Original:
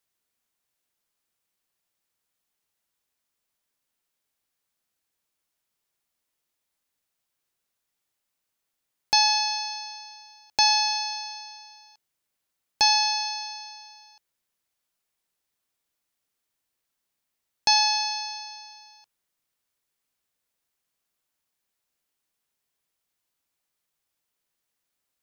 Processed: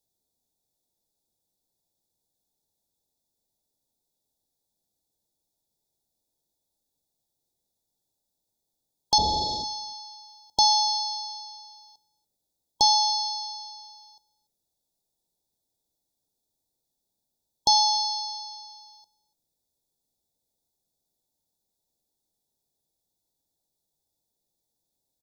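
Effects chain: 9.18–9.64 s: CVSD coder 32 kbps; brick-wall FIR band-stop 950–3300 Hz; bass shelf 460 Hz +7 dB; hum notches 60/120/180/240 Hz; delay 289 ms -24 dB

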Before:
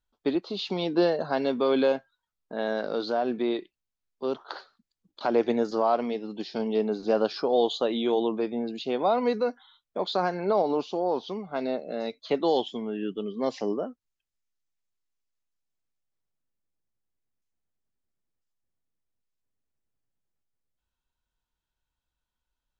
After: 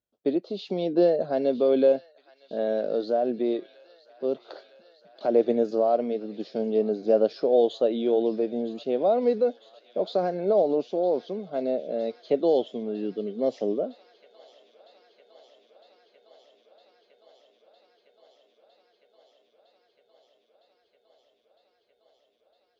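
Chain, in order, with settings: high-pass 110 Hz 12 dB/octave; resonant low shelf 760 Hz +7 dB, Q 3; on a send: feedback echo behind a high-pass 958 ms, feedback 83%, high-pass 1.5 kHz, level -15.5 dB; on the sum: trim -7.5 dB

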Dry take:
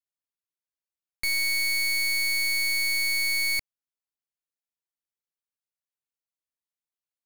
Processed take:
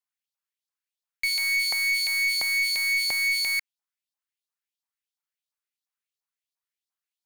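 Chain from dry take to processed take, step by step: LFO high-pass saw up 2.9 Hz 770–4700 Hz; saturation -18.5 dBFS, distortion -17 dB

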